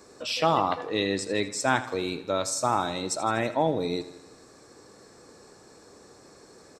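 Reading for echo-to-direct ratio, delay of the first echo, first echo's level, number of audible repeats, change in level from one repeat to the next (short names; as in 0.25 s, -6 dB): -13.5 dB, 81 ms, -15.0 dB, 5, -5.0 dB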